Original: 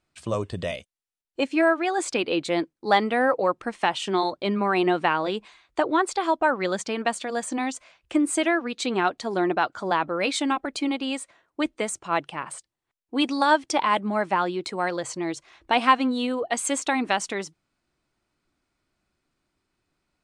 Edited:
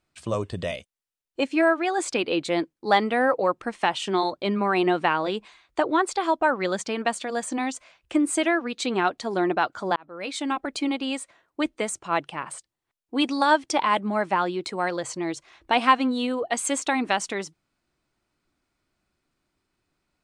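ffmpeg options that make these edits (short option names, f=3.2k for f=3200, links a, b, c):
-filter_complex "[0:a]asplit=2[a][b];[a]atrim=end=9.96,asetpts=PTS-STARTPTS,afade=t=out:st=9.956:d=0.004:c=hsin[c];[b]atrim=start=9.96,asetpts=PTS-STARTPTS,afade=t=in:d=0.72[d];[c][d]concat=n=2:v=0:a=1"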